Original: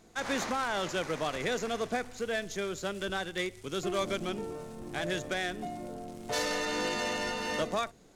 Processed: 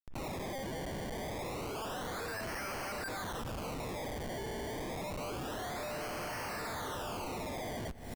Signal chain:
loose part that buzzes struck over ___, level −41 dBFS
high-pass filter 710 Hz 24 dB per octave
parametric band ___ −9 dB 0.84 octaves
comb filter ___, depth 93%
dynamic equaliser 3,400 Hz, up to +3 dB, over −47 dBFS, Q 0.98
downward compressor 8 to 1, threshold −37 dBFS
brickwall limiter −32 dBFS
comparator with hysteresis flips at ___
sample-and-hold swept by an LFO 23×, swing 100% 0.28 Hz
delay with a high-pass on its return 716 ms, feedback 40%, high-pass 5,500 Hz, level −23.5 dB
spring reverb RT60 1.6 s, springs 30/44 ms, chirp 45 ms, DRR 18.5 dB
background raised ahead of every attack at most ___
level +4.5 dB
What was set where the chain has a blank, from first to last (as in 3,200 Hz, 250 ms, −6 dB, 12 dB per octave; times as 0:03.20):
−52 dBFS, 12,000 Hz, 6.4 ms, −53.5 dBFS, 64 dB per second